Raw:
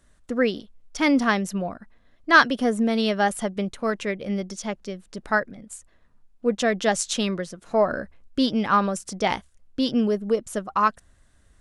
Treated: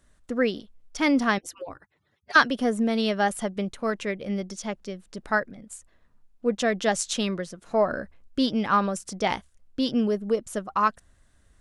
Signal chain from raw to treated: 1.38–2.36 s: harmonic-percussive separation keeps percussive; trim -2 dB

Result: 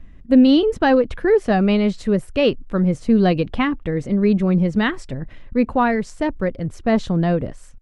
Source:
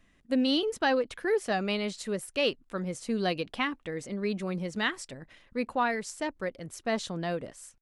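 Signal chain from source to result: RIAA curve playback; trim +8.5 dB

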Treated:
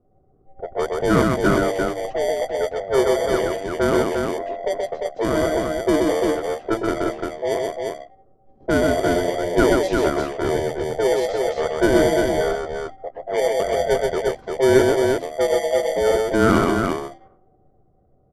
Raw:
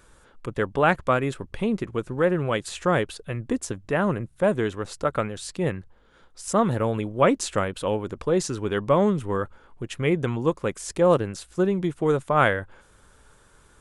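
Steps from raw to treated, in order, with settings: every band turned upside down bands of 1 kHz; low-pass 1.9 kHz 6 dB/octave; hum notches 50/100/150/200/250/300/350/400/450 Hz; in parallel at -5 dB: sample-and-hold 25×; on the sum: level-controlled noise filter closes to 370 Hz, open at -18.5 dBFS; on a send: loudspeakers at several distances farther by 33 m -3 dB, 90 m -4 dB; on the sum: wide varispeed 0.753×

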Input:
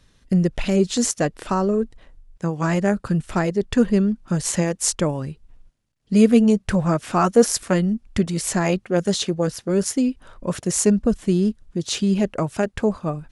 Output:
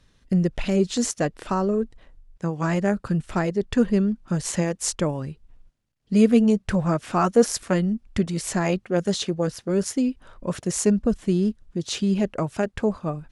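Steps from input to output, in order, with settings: treble shelf 8.5 kHz -6 dB; trim -2.5 dB

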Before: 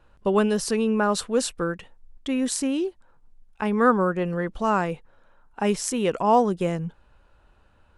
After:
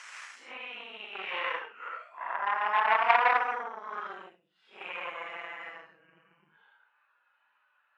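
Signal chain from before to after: Paulstretch 6.3×, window 0.05 s, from 5.85 s; Chebyshev shaper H 3 -14 dB, 8 -27 dB, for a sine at -4.5 dBFS; Butterworth band-pass 1.7 kHz, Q 1.1; trim +6 dB

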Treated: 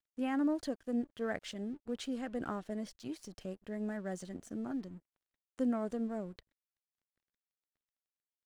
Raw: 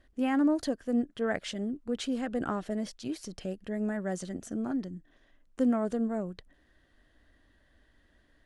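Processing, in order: crossover distortion -55.5 dBFS; trim -6 dB

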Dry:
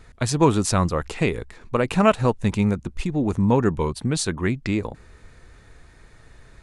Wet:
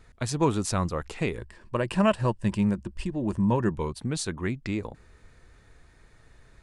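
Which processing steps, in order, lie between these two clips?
1.38–3.71 s: rippled EQ curve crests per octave 1.3, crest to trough 8 dB; trim -6.5 dB

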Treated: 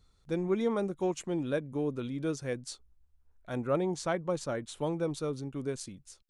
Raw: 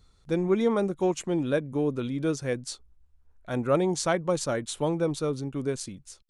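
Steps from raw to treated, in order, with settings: 3.65–4.76 s: treble shelf 3.9 kHz -6.5 dB; trim -5.5 dB

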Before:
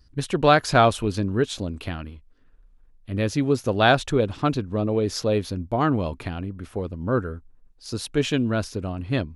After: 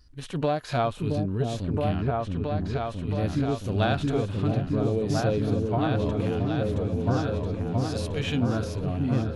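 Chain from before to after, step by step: harmonic-percussive split percussive -17 dB; compression 5:1, threshold -26 dBFS, peak gain reduction 11 dB; bass shelf 490 Hz -3.5 dB; delay with an opening low-pass 671 ms, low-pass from 400 Hz, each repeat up 2 oct, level 0 dB; trim +5 dB

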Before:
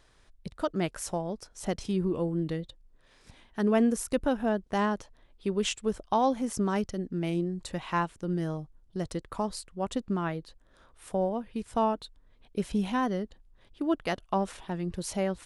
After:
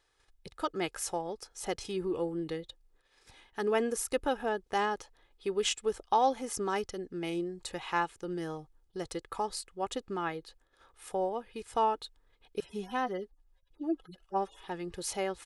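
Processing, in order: 12.60–14.64 s: harmonic-percussive separation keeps harmonic; gate -59 dBFS, range -9 dB; bass shelf 300 Hz -11 dB; comb 2.4 ms, depth 50%

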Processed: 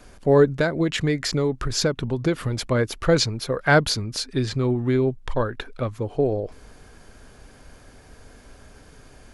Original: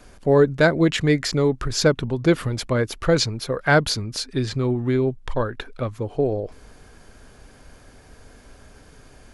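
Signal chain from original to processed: 0.57–2.57 s: compression, threshold -18 dBFS, peak gain reduction 7.5 dB

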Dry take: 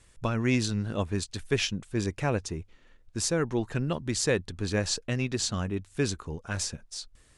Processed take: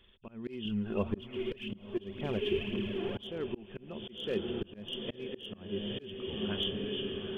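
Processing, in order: knee-point frequency compression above 2.5 kHz 4:1; echo that smears into a reverb 955 ms, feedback 52%, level -6 dB; dynamic bell 1.5 kHz, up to -6 dB, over -46 dBFS, Q 1.6; hard clipper -18.5 dBFS, distortion -23 dB; small resonant body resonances 210/380 Hz, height 14 dB, ringing for 100 ms; slow attack 456 ms; peaking EQ 140 Hz -8 dB 1.1 oct; 0.65–3.24 s: phaser 1.9 Hz, delay 3 ms, feedback 48%; trim -5 dB

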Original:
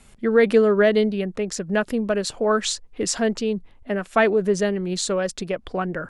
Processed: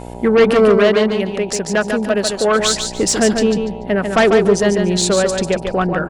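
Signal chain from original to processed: wow and flutter 25 cents; Chebyshev shaper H 5 -12 dB, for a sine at -5 dBFS; mains buzz 60 Hz, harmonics 16, -33 dBFS -2 dB/octave; 0.77–2.60 s: bass shelf 280 Hz -8 dB; on a send: feedback delay 145 ms, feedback 25%, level -6 dB; on the sum: trim +1.5 dB

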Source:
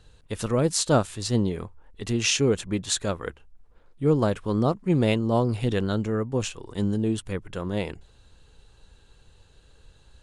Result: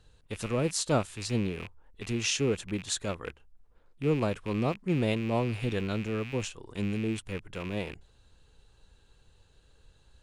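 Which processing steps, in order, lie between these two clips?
rattle on loud lows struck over -38 dBFS, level -25 dBFS; trim -6 dB

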